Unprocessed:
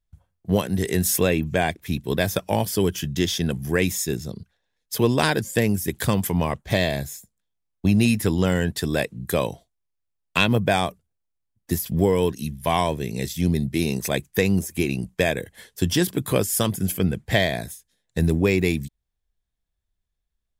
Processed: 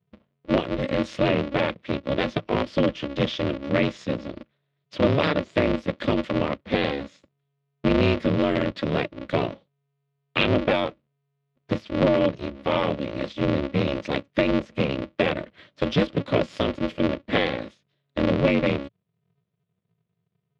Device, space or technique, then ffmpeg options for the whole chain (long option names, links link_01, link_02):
ring modulator pedal into a guitar cabinet: -af "aeval=exprs='val(0)*sgn(sin(2*PI*140*n/s))':channel_layout=same,highpass=100,equalizer=frequency=110:width_type=q:width=4:gain=8,equalizer=frequency=170:width_type=q:width=4:gain=7,equalizer=frequency=580:width_type=q:width=4:gain=6,equalizer=frequency=820:width_type=q:width=4:gain=-8,equalizer=frequency=1600:width_type=q:width=4:gain=-4,lowpass=frequency=3700:width=0.5412,lowpass=frequency=3700:width=1.3066,volume=-1.5dB"